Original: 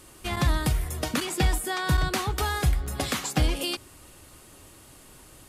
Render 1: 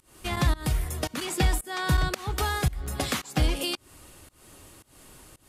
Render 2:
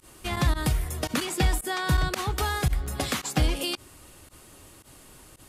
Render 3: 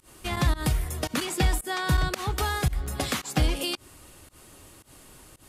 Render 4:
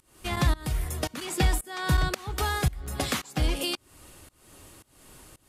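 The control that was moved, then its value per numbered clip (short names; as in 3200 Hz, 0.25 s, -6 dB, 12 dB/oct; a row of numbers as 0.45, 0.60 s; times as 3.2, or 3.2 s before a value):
pump, release: 260, 69, 132, 388 ms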